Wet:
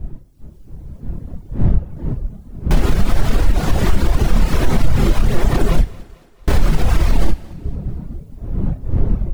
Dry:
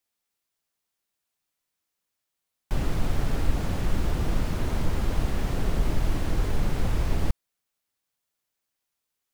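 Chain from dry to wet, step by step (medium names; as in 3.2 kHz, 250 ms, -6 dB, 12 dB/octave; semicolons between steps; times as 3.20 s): wind noise 110 Hz -36 dBFS; 5.81–6.48 s: gate -15 dBFS, range -38 dB; chorus voices 6, 1.5 Hz, delay 29 ms, depth 3 ms; level rider gain up to 6 dB; reverb removal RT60 0.91 s; in parallel at +3 dB: compression, threshold -25 dBFS, peak gain reduction 14.5 dB; on the sum: thinning echo 223 ms, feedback 53%, high-pass 190 Hz, level -23 dB; peak limiter -12.5 dBFS, peak gain reduction 9 dB; on a send at -12 dB: reverberation, pre-delay 3 ms; on the sum: trim +8 dB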